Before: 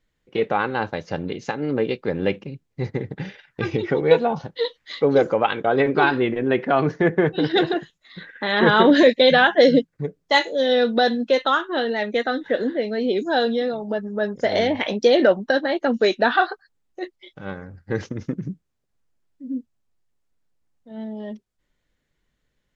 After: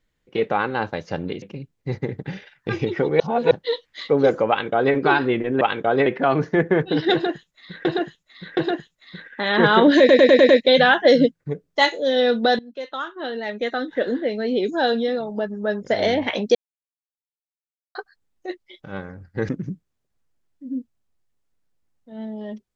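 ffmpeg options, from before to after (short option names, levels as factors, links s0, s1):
-filter_complex "[0:a]asplit=17[s0][s1][s2][s3][s4][s5][s6][s7][s8][s9][s10][s11][s12][s13][s14][s15][s16];[s0]atrim=end=1.422[s17];[s1]atrim=start=2.338:end=4.122[s18];[s2]atrim=start=4.118:end=4.432,asetpts=PTS-STARTPTS,areverse[s19];[s3]atrim=start=4.428:end=6.532[s20];[s4]atrim=start=5.408:end=5.862[s21];[s5]atrim=start=6.528:end=8.322[s22];[s6]atrim=start=7.598:end=8.322[s23];[s7]atrim=start=7.598:end=9.122[s24];[s8]atrim=start=9.018:end=9.122[s25];[s9]atrim=start=9.018:end=9.122[s26];[s10]atrim=start=9.018:end=9.122[s27];[s11]atrim=start=9.018:end=9.122[s28];[s12]atrim=start=9.018:end=11.12,asetpts=PTS-STARTPTS,afade=t=out:st=2.098:d=0.004:c=hsin:silence=0.0891251[s29];[s13]atrim=start=11.12:end=15.08,asetpts=PTS-STARTPTS,afade=t=in:d=1.53:silence=0.0891251,afade=t=out:st=3.956:d=0.004:c=hsin[s30];[s14]atrim=start=15.08:end=16.48,asetpts=PTS-STARTPTS,volume=0[s31];[s15]atrim=start=16.48:end=18.022,asetpts=PTS-STARTPTS,afade=t=in:d=0.004:c=hsin[s32];[s16]atrim=start=18.278[s33];[s17][s18]acrossfade=d=0.004:c1=hsin:c2=hsin[s34];[s34][s19]acrossfade=d=0.004:c1=hsin:c2=hsin[s35];[s35][s20]acrossfade=d=0.004:c1=hsin:c2=hsin[s36];[s36][s21]acrossfade=d=0.004:c1=hsin:c2=hsin[s37];[s37][s22]acrossfade=d=0.004:c1=hsin:c2=hsin[s38];[s38][s23]acrossfade=d=0.004:c1=hsin:c2=hsin[s39];[s39][s24]acrossfade=d=0.004:c1=hsin:c2=hsin[s40];[s40][s25]acrossfade=d=0.004:c1=hsin:c2=hsin[s41];[s41][s26]acrossfade=d=0.004:c1=hsin:c2=hsin[s42];[s42][s27]acrossfade=d=0.004:c1=hsin:c2=hsin[s43];[s43][s28]acrossfade=d=0.004:c1=hsin:c2=hsin[s44];[s29][s30][s31][s32]concat=n=4:v=0:a=1[s45];[s44][s45]acrossfade=d=0.004:c1=hsin:c2=hsin[s46];[s46][s33]acrossfade=d=0.004:c1=hsin:c2=hsin"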